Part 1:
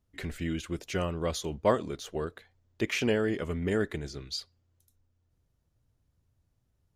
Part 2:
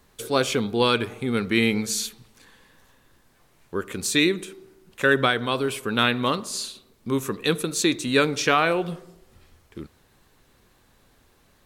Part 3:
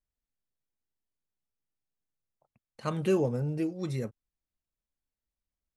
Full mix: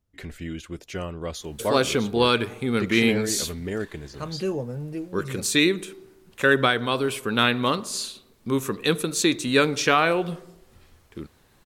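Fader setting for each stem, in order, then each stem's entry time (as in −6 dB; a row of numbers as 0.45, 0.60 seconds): −1.0, +0.5, −1.5 decibels; 0.00, 1.40, 1.35 seconds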